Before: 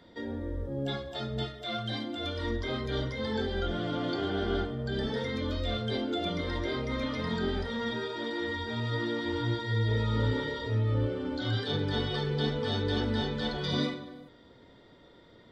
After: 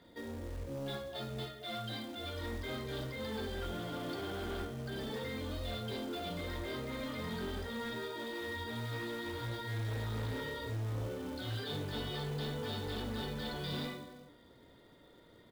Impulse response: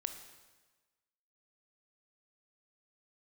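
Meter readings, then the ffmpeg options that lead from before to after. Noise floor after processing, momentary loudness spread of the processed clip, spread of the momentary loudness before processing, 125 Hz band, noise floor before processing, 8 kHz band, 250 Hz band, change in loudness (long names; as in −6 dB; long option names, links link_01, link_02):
−60 dBFS, 3 LU, 5 LU, −8.5 dB, −56 dBFS, can't be measured, −9.0 dB, −8.0 dB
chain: -filter_complex "[0:a]aresample=11025,asoftclip=type=tanh:threshold=-30dB,aresample=44100,acrusher=bits=4:mode=log:mix=0:aa=0.000001[link_01];[1:a]atrim=start_sample=2205,atrim=end_sample=3528[link_02];[link_01][link_02]afir=irnorm=-1:irlink=0,volume=-3dB"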